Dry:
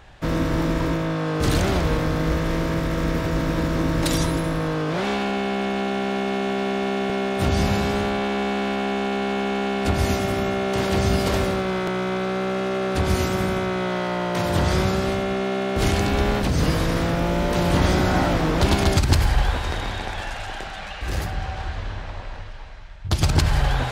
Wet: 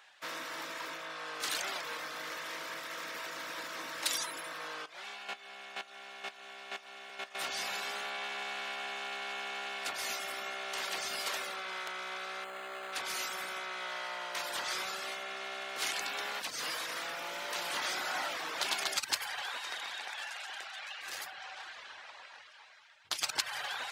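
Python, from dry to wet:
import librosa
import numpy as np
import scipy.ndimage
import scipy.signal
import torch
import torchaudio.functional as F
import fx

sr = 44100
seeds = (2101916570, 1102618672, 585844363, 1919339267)

y = fx.chopper(x, sr, hz=2.1, depth_pct=60, duty_pct=10, at=(4.81, 7.35))
y = fx.resample_linear(y, sr, factor=8, at=(12.44, 12.93))
y = scipy.signal.sosfilt(scipy.signal.bessel(2, 1500.0, 'highpass', norm='mag', fs=sr, output='sos'), y)
y = fx.dereverb_blind(y, sr, rt60_s=0.64)
y = y * librosa.db_to_amplitude(-4.0)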